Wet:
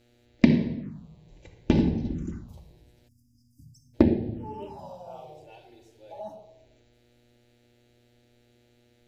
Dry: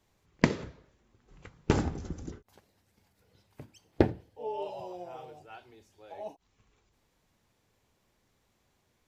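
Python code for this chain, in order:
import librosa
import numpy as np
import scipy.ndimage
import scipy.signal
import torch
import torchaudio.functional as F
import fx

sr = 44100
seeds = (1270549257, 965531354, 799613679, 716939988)

y = fx.room_shoebox(x, sr, seeds[0], volume_m3=4000.0, walls='furnished', distance_m=2.5)
y = fx.dmg_buzz(y, sr, base_hz=120.0, harmonics=39, level_db=-62.0, tilt_db=-5, odd_only=False)
y = fx.small_body(y, sr, hz=(210.0, 3900.0), ring_ms=40, db=9)
y = fx.env_phaser(y, sr, low_hz=170.0, high_hz=1300.0, full_db=-25.5)
y = fx.spec_erase(y, sr, start_s=3.08, length_s=0.86, low_hz=280.0, high_hz=4700.0)
y = y * 10.0 ** (1.0 / 20.0)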